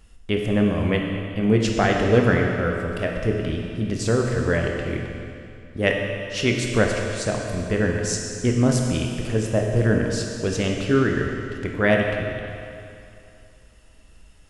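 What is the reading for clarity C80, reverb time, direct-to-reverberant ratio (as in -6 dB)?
3.5 dB, 2.6 s, 1.0 dB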